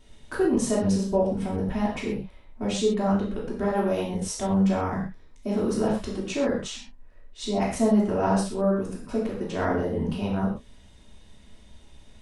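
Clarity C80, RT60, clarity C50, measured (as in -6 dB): 7.5 dB, no single decay rate, 4.0 dB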